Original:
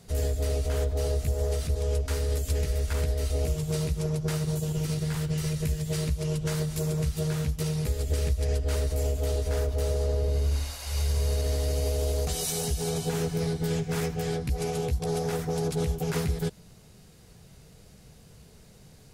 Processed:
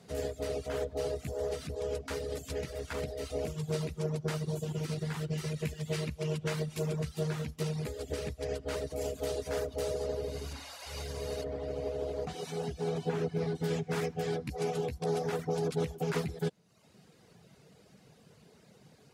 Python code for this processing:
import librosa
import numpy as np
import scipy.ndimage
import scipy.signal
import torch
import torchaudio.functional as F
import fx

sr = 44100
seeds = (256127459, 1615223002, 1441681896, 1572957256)

y = fx.peak_eq(x, sr, hz=2500.0, db=4.5, octaves=0.77, at=(5.57, 6.96))
y = fx.high_shelf(y, sr, hz=4700.0, db=6.5, at=(9.01, 10.53))
y = fx.lowpass(y, sr, hz=fx.line((11.43, 1200.0), (13.54, 3000.0)), slope=6, at=(11.43, 13.54), fade=0.02)
y = scipy.signal.sosfilt(scipy.signal.butter(2, 170.0, 'highpass', fs=sr, output='sos'), y)
y = fx.dereverb_blind(y, sr, rt60_s=0.78)
y = fx.lowpass(y, sr, hz=3200.0, slope=6)